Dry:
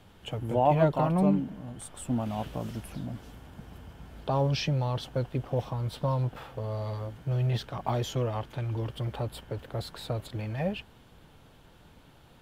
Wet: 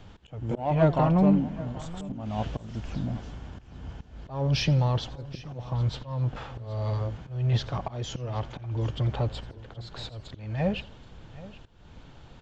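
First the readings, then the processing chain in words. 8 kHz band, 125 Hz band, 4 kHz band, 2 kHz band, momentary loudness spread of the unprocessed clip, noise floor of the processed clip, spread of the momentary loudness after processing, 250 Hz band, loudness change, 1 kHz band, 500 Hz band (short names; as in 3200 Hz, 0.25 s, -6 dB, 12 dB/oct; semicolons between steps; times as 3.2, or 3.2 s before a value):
-1.5 dB, +2.5 dB, +2.5 dB, +2.0 dB, 16 LU, -51 dBFS, 20 LU, +2.5 dB, +2.0 dB, -1.5 dB, -1.0 dB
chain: low shelf 90 Hz +9 dB; downsampling 16000 Hz; in parallel at -5.5 dB: soft clip -23.5 dBFS, distortion -11 dB; on the sum: auto swell 0.304 s; on a send: echo 0.775 s -18.5 dB; on the sum: warbling echo 83 ms, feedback 35%, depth 181 cents, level -20 dB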